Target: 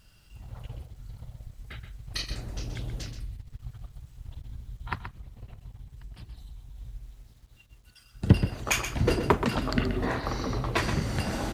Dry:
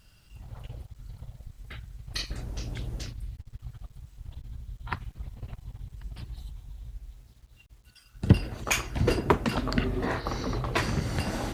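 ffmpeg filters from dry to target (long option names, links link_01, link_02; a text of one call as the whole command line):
ffmpeg -i in.wav -filter_complex "[0:a]asettb=1/sr,asplit=3[link_01][link_02][link_03];[link_01]atrim=end=4.954[link_04];[link_02]atrim=start=4.95:end=6.76,asetpts=PTS-STARTPTS,afade=type=in:duration=0.004:curve=qsin,afade=type=out:start_time=1.806:duration=0.004:curve=qsin,acompressor=threshold=-42dB:ratio=2.5[link_05];[link_03]atrim=start=6.756[link_06];[link_04][link_05]acrossfade=duration=0.004:curve1=hsin:curve2=qsin[link_07];[link_07][link_06]acrossfade=duration=0.004:curve1=qsin:curve2=hsin,aecho=1:1:127:0.335" out.wav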